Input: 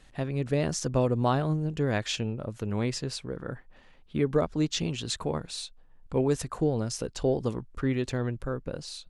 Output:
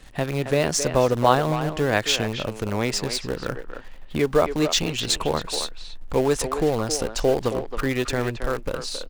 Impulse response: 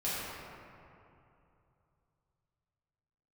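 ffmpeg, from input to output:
-filter_complex "[0:a]asubboost=boost=3.5:cutoff=57,acrossover=split=460[a][b];[a]acompressor=threshold=-40dB:ratio=2[c];[c][b]amix=inputs=2:normalize=0,asplit=2[d][e];[e]acrusher=bits=6:dc=4:mix=0:aa=0.000001,volume=-8dB[f];[d][f]amix=inputs=2:normalize=0,asplit=2[g][h];[h]adelay=270,highpass=300,lowpass=3.4k,asoftclip=type=hard:threshold=-19dB,volume=-8dB[i];[g][i]amix=inputs=2:normalize=0,volume=7dB"

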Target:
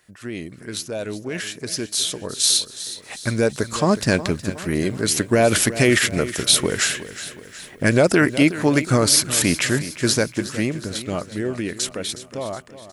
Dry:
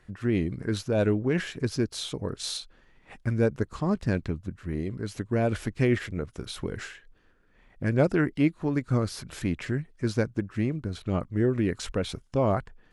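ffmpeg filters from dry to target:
-filter_complex "[0:a]highpass=f=200:p=1,equalizer=f=620:w=4.6:g=4.5,alimiter=limit=-19dB:level=0:latency=1:release=47,dynaudnorm=f=570:g=11:m=15.5dB,crystalizer=i=5:c=0,asplit=2[a][b];[b]aecho=0:1:366|732|1098|1464|1830:0.2|0.102|0.0519|0.0265|0.0135[c];[a][c]amix=inputs=2:normalize=0,volume=-3dB"

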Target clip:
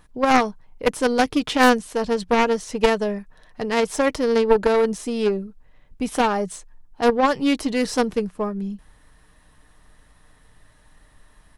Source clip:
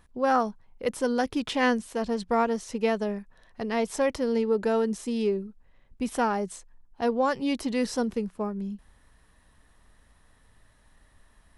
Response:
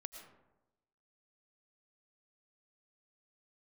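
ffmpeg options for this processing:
-af "aecho=1:1:6.6:0.31,aeval=exprs='0.266*(cos(1*acos(clip(val(0)/0.266,-1,1)))-cos(1*PI/2))+0.133*(cos(4*acos(clip(val(0)/0.266,-1,1)))-cos(4*PI/2))+0.075*(cos(6*acos(clip(val(0)/0.266,-1,1)))-cos(6*PI/2))':c=same,volume=5.5dB"

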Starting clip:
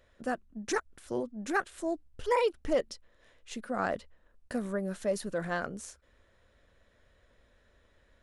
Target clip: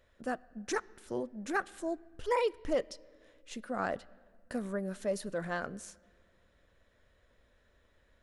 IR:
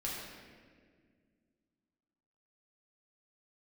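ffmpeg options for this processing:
-filter_complex "[0:a]asplit=2[a][b];[b]lowshelf=f=170:g=-9[c];[1:a]atrim=start_sample=2205,lowpass=6.6k[d];[c][d]afir=irnorm=-1:irlink=0,volume=-22.5dB[e];[a][e]amix=inputs=2:normalize=0,volume=-3dB"

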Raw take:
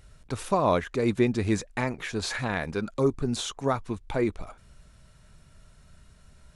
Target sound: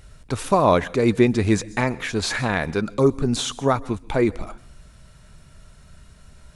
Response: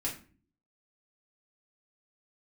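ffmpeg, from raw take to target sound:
-filter_complex "[0:a]asplit=2[a][b];[1:a]atrim=start_sample=2205,highshelf=f=6.2k:g=9,adelay=125[c];[b][c]afir=irnorm=-1:irlink=0,volume=-25dB[d];[a][d]amix=inputs=2:normalize=0,volume=6.5dB"

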